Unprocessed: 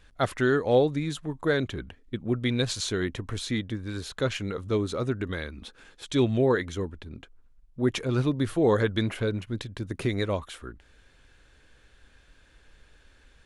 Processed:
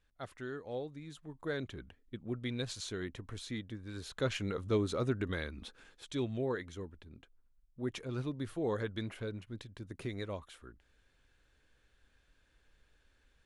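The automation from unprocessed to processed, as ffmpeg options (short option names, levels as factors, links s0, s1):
-af "volume=0.596,afade=t=in:st=0.99:d=0.65:silence=0.421697,afade=t=in:st=3.84:d=0.61:silence=0.446684,afade=t=out:st=5.62:d=0.58:silence=0.398107"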